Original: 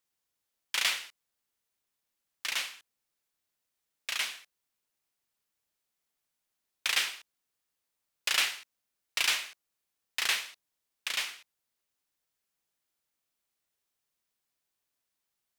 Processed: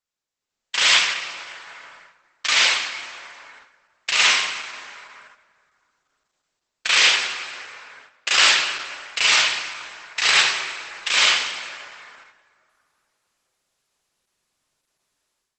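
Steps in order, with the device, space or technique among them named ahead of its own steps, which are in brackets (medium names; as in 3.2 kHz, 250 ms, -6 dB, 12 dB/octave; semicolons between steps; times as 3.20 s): 6.97–8.45 s: gate with hold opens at -37 dBFS; plate-style reverb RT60 2.9 s, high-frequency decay 0.55×, DRR 6.5 dB; speakerphone in a meeting room (reverberation RT60 0.75 s, pre-delay 35 ms, DRR -6 dB; level rider gain up to 15 dB; gate -45 dBFS, range -8 dB; trim -1 dB; Opus 12 kbps 48 kHz)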